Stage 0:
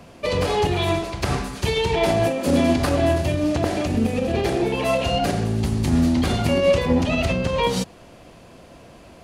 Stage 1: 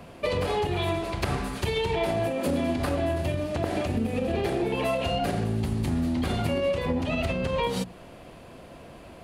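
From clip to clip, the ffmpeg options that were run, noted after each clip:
-af "acompressor=threshold=-23dB:ratio=6,equalizer=f=6k:t=o:w=0.83:g=-7,bandreject=f=60:t=h:w=6,bandreject=f=120:t=h:w=6,bandreject=f=180:t=h:w=6,bandreject=f=240:t=h:w=6,bandreject=f=300:t=h:w=6"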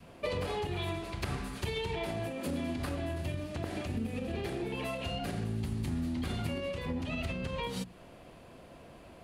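-af "adynamicequalizer=threshold=0.01:dfrequency=630:dqfactor=0.86:tfrequency=630:tqfactor=0.86:attack=5:release=100:ratio=0.375:range=3:mode=cutabove:tftype=bell,volume=-6.5dB"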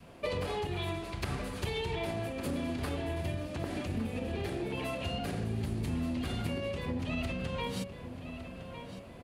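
-filter_complex "[0:a]asplit=2[a][b];[b]adelay=1157,lowpass=f=4.2k:p=1,volume=-10dB,asplit=2[c][d];[d]adelay=1157,lowpass=f=4.2k:p=1,volume=0.5,asplit=2[e][f];[f]adelay=1157,lowpass=f=4.2k:p=1,volume=0.5,asplit=2[g][h];[h]adelay=1157,lowpass=f=4.2k:p=1,volume=0.5,asplit=2[i][j];[j]adelay=1157,lowpass=f=4.2k:p=1,volume=0.5[k];[a][c][e][g][i][k]amix=inputs=6:normalize=0"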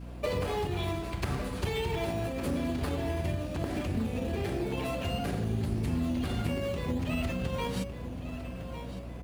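-filter_complex "[0:a]asplit=2[a][b];[b]acrusher=samples=11:mix=1:aa=0.000001:lfo=1:lforange=6.6:lforate=1.5,volume=-7dB[c];[a][c]amix=inputs=2:normalize=0,aeval=exprs='val(0)+0.00891*(sin(2*PI*60*n/s)+sin(2*PI*2*60*n/s)/2+sin(2*PI*3*60*n/s)/3+sin(2*PI*4*60*n/s)/4+sin(2*PI*5*60*n/s)/5)':c=same"

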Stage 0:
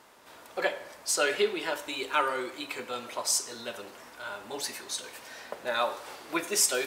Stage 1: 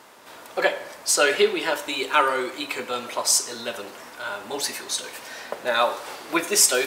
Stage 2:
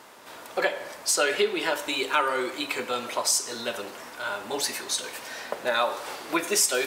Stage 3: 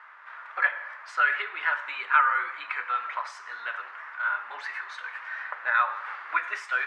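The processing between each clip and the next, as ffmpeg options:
-af "highpass=f=100:p=1,volume=7.5dB"
-af "acompressor=threshold=-23dB:ratio=2"
-af "asuperpass=centerf=1500:order=4:qfactor=1.7,volume=6dB"

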